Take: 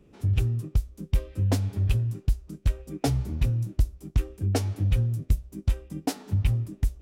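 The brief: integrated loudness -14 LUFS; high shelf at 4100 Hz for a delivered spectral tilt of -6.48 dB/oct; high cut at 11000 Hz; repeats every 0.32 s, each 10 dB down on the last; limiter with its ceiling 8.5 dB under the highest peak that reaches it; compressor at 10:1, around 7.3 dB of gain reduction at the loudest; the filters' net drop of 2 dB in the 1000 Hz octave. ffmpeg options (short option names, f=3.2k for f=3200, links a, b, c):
-af "lowpass=11k,equalizer=f=1k:t=o:g=-3.5,highshelf=f=4.1k:g=8,acompressor=threshold=-24dB:ratio=10,alimiter=limit=-23dB:level=0:latency=1,aecho=1:1:320|640|960|1280:0.316|0.101|0.0324|0.0104,volume=19dB"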